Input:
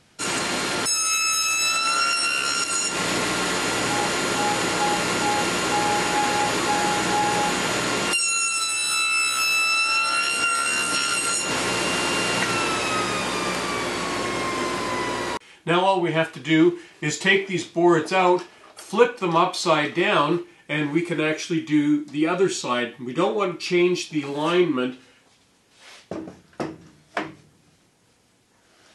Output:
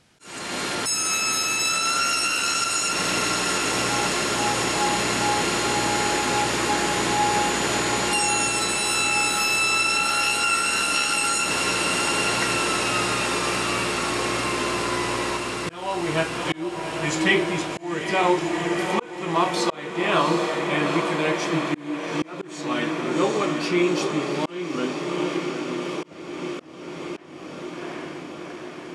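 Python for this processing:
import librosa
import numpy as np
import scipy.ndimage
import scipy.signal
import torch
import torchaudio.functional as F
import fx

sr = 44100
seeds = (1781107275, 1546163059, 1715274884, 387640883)

y = fx.echo_diffused(x, sr, ms=766, feedback_pct=74, wet_db=-5.5)
y = fx.auto_swell(y, sr, attack_ms=438.0)
y = y * librosa.db_to_amplitude(-2.0)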